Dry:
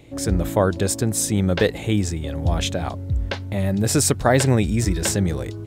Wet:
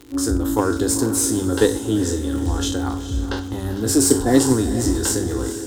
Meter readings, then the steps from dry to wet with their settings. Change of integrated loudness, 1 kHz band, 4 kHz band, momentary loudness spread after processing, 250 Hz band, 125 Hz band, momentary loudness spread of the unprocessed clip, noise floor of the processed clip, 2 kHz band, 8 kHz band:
+1.5 dB, -1.0 dB, +0.5 dB, 10 LU, +4.0 dB, -4.0 dB, 8 LU, -30 dBFS, -3.0 dB, +3.0 dB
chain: spectral trails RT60 0.36 s; notches 50/100/150/200 Hz; in parallel at 0 dB: level quantiser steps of 15 dB; on the sum: dynamic EQ 1200 Hz, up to -5 dB, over -37 dBFS, Q 3.3; spectral repair 3.88–4.48, 740–1700 Hz both; fixed phaser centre 620 Hz, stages 6; small resonant body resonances 270/1400/3100 Hz, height 7 dB; crackle 73/s -28 dBFS; added harmonics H 8 -31 dB, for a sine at 0.5 dBFS; on a send: diffused feedback echo 0.453 s, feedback 42%, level -11 dB; on the sum: gain -1 dB

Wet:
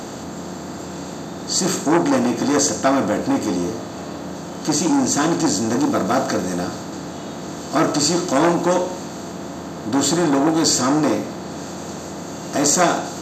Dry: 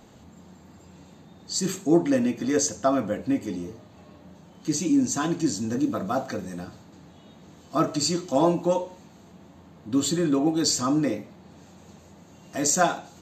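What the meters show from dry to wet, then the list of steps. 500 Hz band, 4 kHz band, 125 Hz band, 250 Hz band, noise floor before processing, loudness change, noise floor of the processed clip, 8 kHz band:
+6.5 dB, +7.5 dB, +5.5 dB, +5.5 dB, -51 dBFS, +6.0 dB, -32 dBFS, +7.5 dB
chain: per-bin compression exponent 0.6; core saturation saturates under 1100 Hz; gain +4.5 dB

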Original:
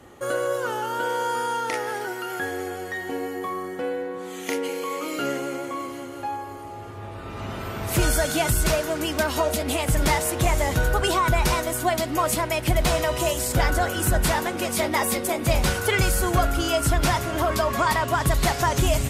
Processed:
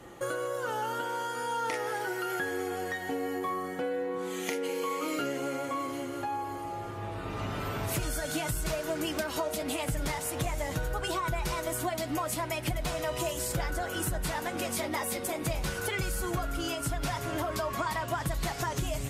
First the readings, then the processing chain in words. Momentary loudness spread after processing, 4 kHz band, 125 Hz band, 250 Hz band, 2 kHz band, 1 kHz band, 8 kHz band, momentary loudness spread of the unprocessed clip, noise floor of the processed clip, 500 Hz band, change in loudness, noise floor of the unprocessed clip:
3 LU, -9.0 dB, -10.0 dB, -7.0 dB, -8.5 dB, -8.5 dB, -8.5 dB, 10 LU, -38 dBFS, -8.0 dB, -8.5 dB, -36 dBFS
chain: compressor, threshold -29 dBFS, peak gain reduction 13 dB; flange 0.44 Hz, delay 5.8 ms, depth 1.4 ms, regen -45%; gain +3.5 dB

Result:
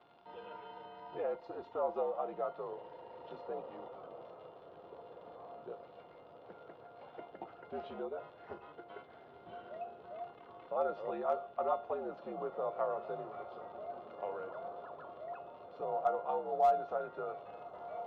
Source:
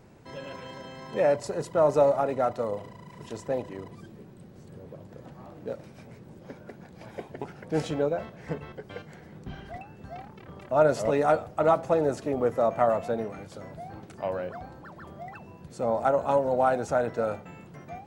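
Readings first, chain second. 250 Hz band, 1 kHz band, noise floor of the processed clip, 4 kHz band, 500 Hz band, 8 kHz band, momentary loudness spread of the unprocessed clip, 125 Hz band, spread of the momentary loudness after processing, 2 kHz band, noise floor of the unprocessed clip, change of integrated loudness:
-17.0 dB, -7.5 dB, -57 dBFS, under -10 dB, -12.0 dB, under -30 dB, 22 LU, -23.5 dB, 18 LU, -16.0 dB, -50 dBFS, -13.0 dB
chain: crackle 110/s -36 dBFS; mistuned SSB -72 Hz 270–3500 Hz; in parallel at +3 dB: compressor 16:1, threshold -32 dBFS, peak gain reduction 17.5 dB; on the sum: resonator 700 Hz, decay 0.42 s, mix 90%; hard clip -26.5 dBFS, distortion -28 dB; ten-band EQ 250 Hz -8 dB, 1000 Hz +7 dB, 2000 Hz -10 dB; diffused feedback echo 1.816 s, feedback 55%, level -12.5 dB; gain +3 dB

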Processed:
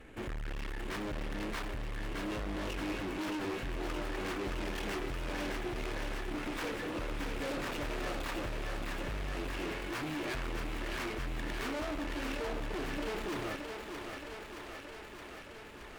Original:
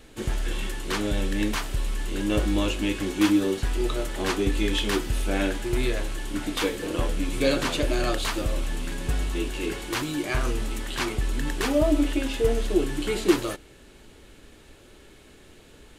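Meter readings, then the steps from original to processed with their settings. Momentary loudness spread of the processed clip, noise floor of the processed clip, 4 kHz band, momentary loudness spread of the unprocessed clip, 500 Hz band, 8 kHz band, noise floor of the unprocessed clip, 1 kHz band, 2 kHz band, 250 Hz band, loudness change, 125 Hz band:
6 LU, -48 dBFS, -11.5 dB, 8 LU, -12.0 dB, -14.0 dB, -51 dBFS, -6.5 dB, -7.0 dB, -13.0 dB, -12.0 dB, -11.5 dB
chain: tracing distortion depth 0.15 ms; resonant high shelf 3100 Hz -10 dB, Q 1.5; tube stage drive 36 dB, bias 0.5; thinning echo 0.621 s, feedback 77%, high-pass 270 Hz, level -5 dB

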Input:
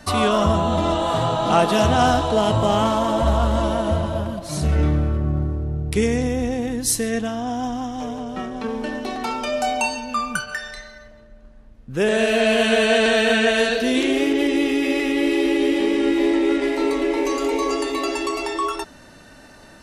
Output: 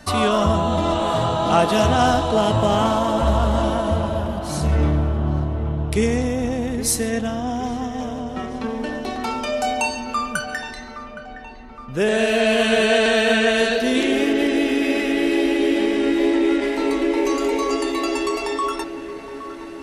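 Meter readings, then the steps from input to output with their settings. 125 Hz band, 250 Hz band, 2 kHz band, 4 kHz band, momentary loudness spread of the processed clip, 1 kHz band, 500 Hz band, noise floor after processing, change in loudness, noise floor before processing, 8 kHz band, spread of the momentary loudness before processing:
+0.5 dB, +0.5 dB, +0.5 dB, 0.0 dB, 12 LU, +0.5 dB, +0.5 dB, -36 dBFS, +0.5 dB, -46 dBFS, 0.0 dB, 11 LU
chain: dark delay 0.817 s, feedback 64%, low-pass 2700 Hz, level -13 dB

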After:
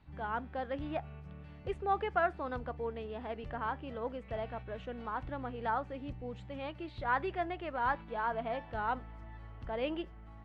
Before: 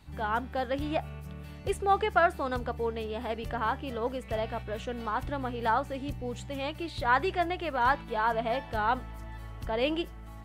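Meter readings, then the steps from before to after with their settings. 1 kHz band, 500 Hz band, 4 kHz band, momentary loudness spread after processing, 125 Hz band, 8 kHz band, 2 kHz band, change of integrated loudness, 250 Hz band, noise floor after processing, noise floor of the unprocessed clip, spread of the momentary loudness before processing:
-6.5 dB, -6.5 dB, -11.5 dB, 10 LU, -6.5 dB, under -25 dB, -7.0 dB, -6.5 dB, -6.5 dB, -51 dBFS, -44 dBFS, 10 LU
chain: LPF 2700 Hz 12 dB/oct; gain -6.5 dB

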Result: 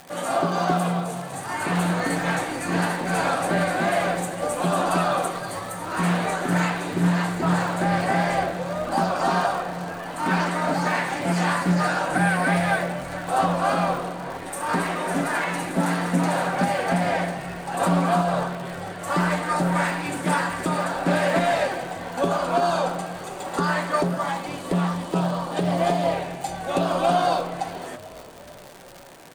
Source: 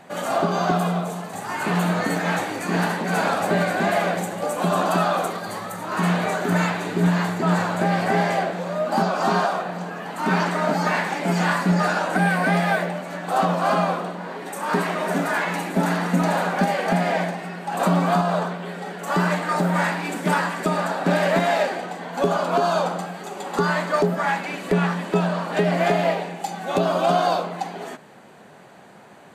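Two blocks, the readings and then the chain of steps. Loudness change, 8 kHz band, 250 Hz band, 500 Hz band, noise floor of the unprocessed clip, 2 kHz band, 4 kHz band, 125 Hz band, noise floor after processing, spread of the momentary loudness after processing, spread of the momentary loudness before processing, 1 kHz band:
-1.5 dB, +1.5 dB, -1.5 dB, -2.0 dB, -44 dBFS, -1.5 dB, -1.0 dB, -1.0 dB, -39 dBFS, 9 LU, 10 LU, -1.0 dB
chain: bell 9100 Hz +10 dB 0.21 oct; spectral gain 24.17–26.13, 1300–2900 Hz -7 dB; notch comb 210 Hz; crackle 200/s -31 dBFS; on a send: frequency-shifting echo 0.445 s, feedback 62%, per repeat -39 Hz, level -19 dB; on the sum: Doppler distortion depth 0.13 ms

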